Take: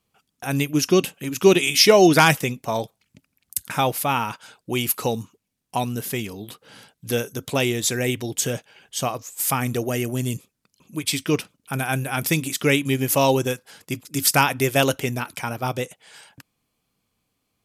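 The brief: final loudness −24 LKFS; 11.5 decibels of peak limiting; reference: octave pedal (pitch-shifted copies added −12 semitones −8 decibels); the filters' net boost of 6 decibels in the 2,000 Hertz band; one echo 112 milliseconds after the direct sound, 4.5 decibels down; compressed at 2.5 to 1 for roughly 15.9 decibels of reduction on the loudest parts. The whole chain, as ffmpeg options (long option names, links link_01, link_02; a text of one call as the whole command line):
ffmpeg -i in.wav -filter_complex "[0:a]equalizer=frequency=2000:width_type=o:gain=8,acompressor=threshold=-33dB:ratio=2.5,alimiter=limit=-21dB:level=0:latency=1,aecho=1:1:112:0.596,asplit=2[link_01][link_02];[link_02]asetrate=22050,aresample=44100,atempo=2,volume=-8dB[link_03];[link_01][link_03]amix=inputs=2:normalize=0,volume=8dB" out.wav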